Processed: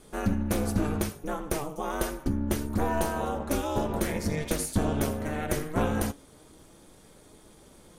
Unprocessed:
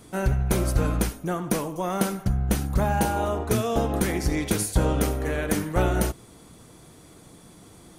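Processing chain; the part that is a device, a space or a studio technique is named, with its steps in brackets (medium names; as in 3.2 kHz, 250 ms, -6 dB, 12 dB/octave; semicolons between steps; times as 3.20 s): alien voice (ring modulator 150 Hz; flange 0.27 Hz, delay 4.6 ms, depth 3.6 ms, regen +75%); trim +3 dB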